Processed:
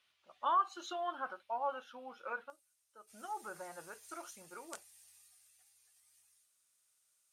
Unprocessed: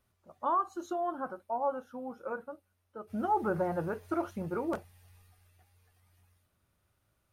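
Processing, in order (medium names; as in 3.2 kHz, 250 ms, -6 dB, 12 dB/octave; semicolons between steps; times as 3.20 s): band-pass filter 3.1 kHz, Q 2.1, from 2.50 s 7.8 kHz; trim +13.5 dB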